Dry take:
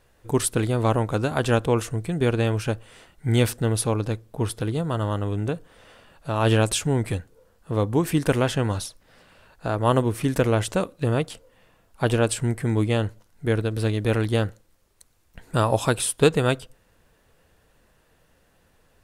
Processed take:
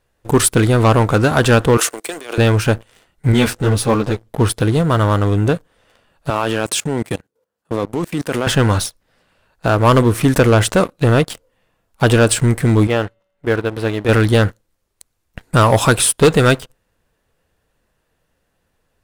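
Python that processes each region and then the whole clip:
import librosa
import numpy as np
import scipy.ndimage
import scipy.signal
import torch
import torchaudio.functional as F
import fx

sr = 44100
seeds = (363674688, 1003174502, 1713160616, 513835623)

y = fx.chain(x, sr, fx.high_shelf(hz=5000.0, db=6.5),
    fx.over_compress(threshold_db=-25.0, ratio=-0.5),
    fx.bessel_highpass(hz=520.0, order=6), at=(1.77, 2.38))
y = fx.chain(y, sr, fx.law_mismatch(coded='mu'),
    fx.high_shelf(hz=9900.0, db=-10.0),
    fx.ensemble(), at=(3.32, 4.29))
y = fx.chain(y, sr, fx.highpass(hz=170.0, slope=12),
    fx.level_steps(step_db=15), at=(6.3, 8.47))
y = fx.chain(y, sr, fx.bass_treble(bass_db=-8, treble_db=-11),
    fx.comb_fb(f0_hz=190.0, decay_s=1.5, harmonics='all', damping=0.0, mix_pct=30), at=(12.87, 14.09))
y = fx.dynamic_eq(y, sr, hz=1400.0, q=1.5, threshold_db=-39.0, ratio=4.0, max_db=4)
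y = fx.leveller(y, sr, passes=3)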